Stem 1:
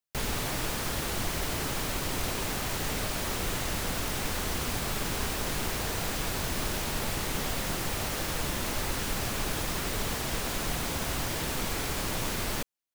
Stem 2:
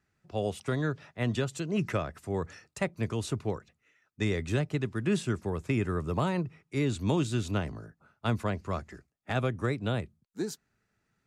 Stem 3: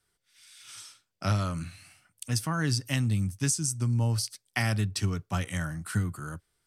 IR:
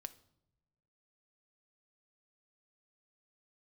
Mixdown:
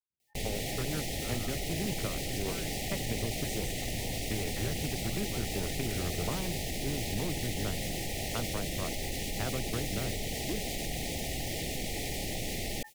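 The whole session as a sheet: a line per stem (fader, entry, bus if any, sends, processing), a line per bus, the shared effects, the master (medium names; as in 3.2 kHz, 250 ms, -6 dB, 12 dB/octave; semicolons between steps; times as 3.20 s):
-5.5 dB, 0.20 s, no send, FFT band-reject 850–1800 Hz; level flattener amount 70%
-2.0 dB, 0.10 s, no send, local Wiener filter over 41 samples; compression, threshold -31 dBFS, peak gain reduction 8 dB
-18.0 dB, 0.00 s, no send, none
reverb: none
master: gate with hold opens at -27 dBFS; loudspeaker Doppler distortion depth 0.17 ms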